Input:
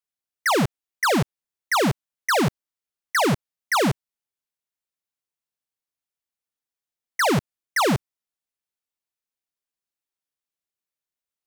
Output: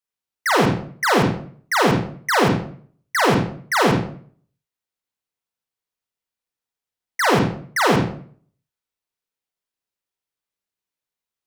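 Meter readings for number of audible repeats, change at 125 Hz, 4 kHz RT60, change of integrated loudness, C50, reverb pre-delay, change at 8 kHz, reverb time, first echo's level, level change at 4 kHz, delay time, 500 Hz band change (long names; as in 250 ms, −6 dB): no echo audible, +4.0 dB, 0.40 s, +3.5 dB, 2.5 dB, 34 ms, +0.5 dB, 0.50 s, no echo audible, +2.5 dB, no echo audible, +4.5 dB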